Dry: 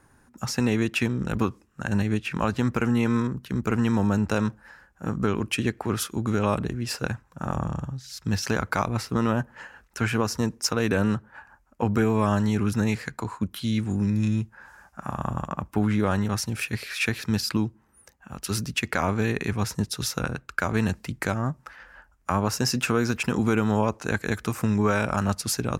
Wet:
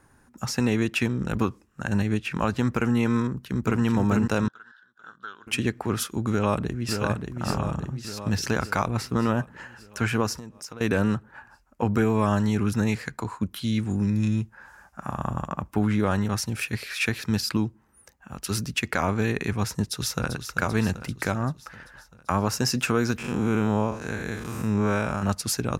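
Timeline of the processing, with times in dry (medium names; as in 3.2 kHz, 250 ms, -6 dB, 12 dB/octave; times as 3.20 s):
3.22–3.83 s: echo throw 440 ms, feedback 50%, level -3.5 dB
4.48–5.47 s: two resonant band-passes 2.3 kHz, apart 1.2 oct
6.30–7.00 s: echo throw 580 ms, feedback 60%, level -5 dB
10.36–10.81 s: compression, threshold -36 dBFS
19.71–20.30 s: echo throw 390 ms, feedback 60%, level -9 dB
23.18–25.23 s: spectral blur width 139 ms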